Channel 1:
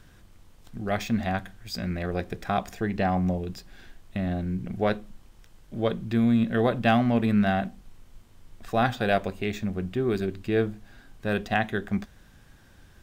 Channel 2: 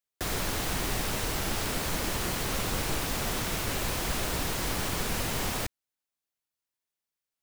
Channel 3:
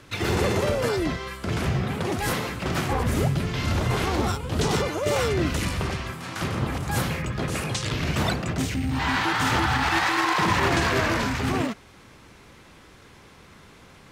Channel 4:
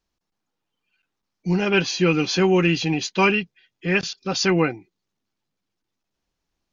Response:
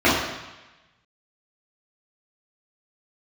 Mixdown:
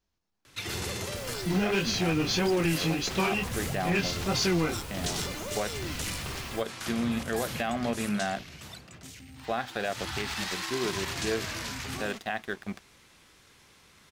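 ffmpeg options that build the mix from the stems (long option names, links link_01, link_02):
-filter_complex "[0:a]highpass=frequency=410:poles=1,aeval=exprs='sgn(val(0))*max(abs(val(0))-0.00668,0)':channel_layout=same,adelay=750,volume=-0.5dB[link_01];[1:a]adelay=950,volume=-12.5dB[link_02];[2:a]highshelf=frequency=2100:gain=12,acrossover=split=190|3000[link_03][link_04][link_05];[link_04]acompressor=threshold=-24dB:ratio=6[link_06];[link_03][link_06][link_05]amix=inputs=3:normalize=0,adelay=450,volume=-1dB,afade=type=out:start_time=7.74:duration=0.73:silence=0.266073,afade=type=in:start_time=9.76:duration=0.38:silence=0.298538[link_07];[3:a]equalizer=frequency=86:width_type=o:width=0.77:gain=7,asoftclip=type=tanh:threshold=-14.5dB,flanger=delay=19:depth=6.9:speed=1.6,volume=0.5dB[link_08];[link_01][link_02][link_07][link_08]amix=inputs=4:normalize=0,alimiter=limit=-18dB:level=0:latency=1:release=120"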